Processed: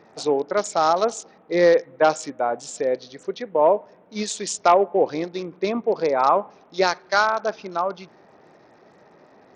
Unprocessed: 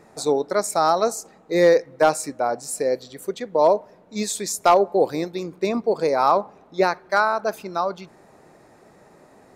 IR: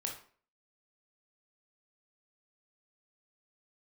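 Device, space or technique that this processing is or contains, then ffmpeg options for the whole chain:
Bluetooth headset: -filter_complex "[0:a]asettb=1/sr,asplit=3[a][b][c];[a]atrim=end=6.404[d];[b]atrim=start=6.4:end=7.46,asetpts=PTS-STARTPTS,afade=t=in:d=0.004:c=qsin,afade=t=out:st=1.056:d=0.004:c=qsin,aemphasis=mode=production:type=75fm[e];[c]atrim=start=7.456[f];[d][e]acrossfade=d=0.004:c1=hsin:c2=qsin[g];[g][f]acrossfade=d=0.004:c1=qsin:c2=hsin,highpass=f=160:p=1,aresample=16000,aresample=44100" -ar 48000 -c:a sbc -b:a 64k

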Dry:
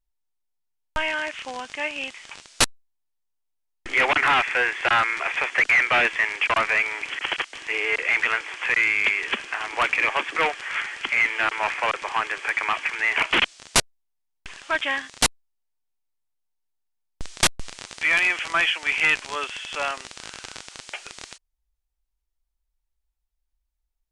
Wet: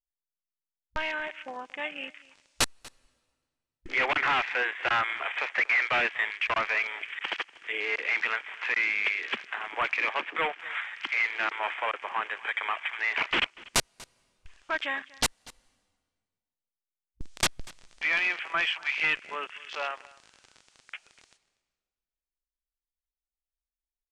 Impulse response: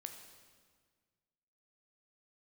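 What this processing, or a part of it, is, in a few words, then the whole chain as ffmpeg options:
compressed reverb return: -filter_complex "[0:a]asettb=1/sr,asplit=3[a][b][c];[a]atrim=end=10.124[d];[b]atrim=start=10.12:end=10.6,asetpts=PTS-STARTPTS,afade=t=in:d=0.004:c=qsin,afade=t=out:st=0.476:d=0.004:c=qsin,lowpass=5.8k[e];[c]atrim=start=10.596[f];[d][e]acrossfade=d=0.004:c1=hsin:c2=qsin[g];[g][f]acrossfade=d=0.004:c1=qsin:c2=hsin,asplit=2[h][i];[1:a]atrim=start_sample=2205[j];[i][j]afir=irnorm=-1:irlink=0,acompressor=threshold=-40dB:ratio=6,volume=1dB[k];[h][k]amix=inputs=2:normalize=0,afwtdn=0.0282,aecho=1:1:241:0.0794,volume=-7dB"

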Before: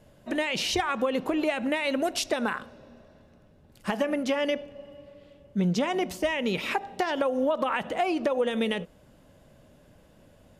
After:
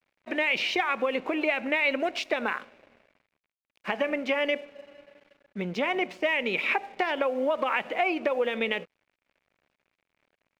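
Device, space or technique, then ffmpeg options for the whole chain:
pocket radio on a weak battery: -af "highpass=300,lowpass=3.4k,aeval=exprs='sgn(val(0))*max(abs(val(0))-0.00178,0)':c=same,equalizer=f=2.3k:t=o:w=0.45:g=10"

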